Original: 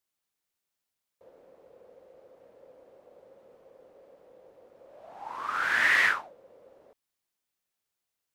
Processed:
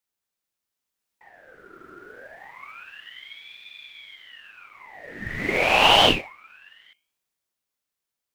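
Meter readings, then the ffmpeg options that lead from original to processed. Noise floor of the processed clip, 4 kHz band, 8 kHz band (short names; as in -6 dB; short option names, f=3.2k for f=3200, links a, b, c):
under -85 dBFS, +19.0 dB, +8.5 dB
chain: -filter_complex "[0:a]asplit=2[a][b];[b]acrusher=bits=4:mode=log:mix=0:aa=0.000001,volume=-10.5dB[c];[a][c]amix=inputs=2:normalize=0,bandreject=f=51.44:t=h:w=4,bandreject=f=102.88:t=h:w=4,bandreject=f=154.32:t=h:w=4,bandreject=f=205.76:t=h:w=4,bandreject=f=257.2:t=h:w=4,bandreject=f=308.64:t=h:w=4,bandreject=f=360.08:t=h:w=4,bandreject=f=411.52:t=h:w=4,bandreject=f=462.96:t=h:w=4,bandreject=f=514.4:t=h:w=4,dynaudnorm=f=200:g=17:m=13.5dB,aeval=exprs='val(0)*sin(2*PI*1900*n/s+1900*0.55/0.27*sin(2*PI*0.27*n/s))':c=same"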